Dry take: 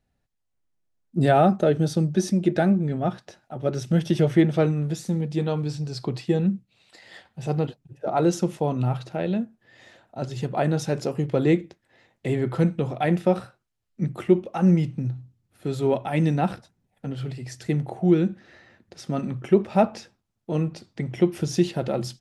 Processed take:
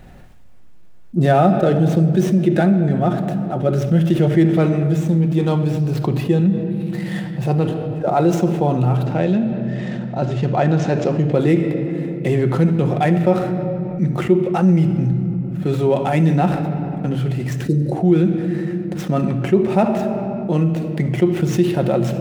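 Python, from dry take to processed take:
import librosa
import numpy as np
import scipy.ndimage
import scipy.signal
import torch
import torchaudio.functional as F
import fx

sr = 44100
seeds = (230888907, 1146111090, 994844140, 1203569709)

y = scipy.ndimage.median_filter(x, 9, mode='constant')
y = fx.lowpass(y, sr, hz=7000.0, slope=24, at=(9.06, 11.33))
y = fx.spec_box(y, sr, start_s=17.65, length_s=0.27, low_hz=600.0, high_hz=3700.0, gain_db=-30)
y = fx.room_shoebox(y, sr, seeds[0], volume_m3=3800.0, walls='mixed', distance_m=0.95)
y = fx.env_flatten(y, sr, amount_pct=50)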